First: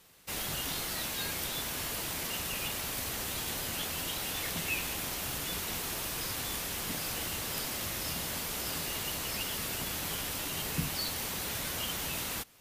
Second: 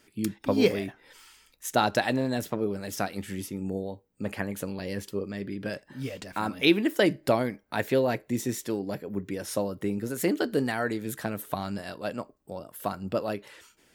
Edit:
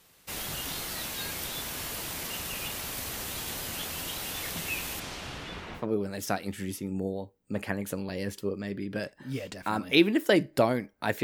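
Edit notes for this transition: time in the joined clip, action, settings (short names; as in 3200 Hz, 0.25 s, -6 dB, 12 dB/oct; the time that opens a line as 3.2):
first
4.99–5.88 LPF 7200 Hz -> 1600 Hz
5.81 switch to second from 2.51 s, crossfade 0.14 s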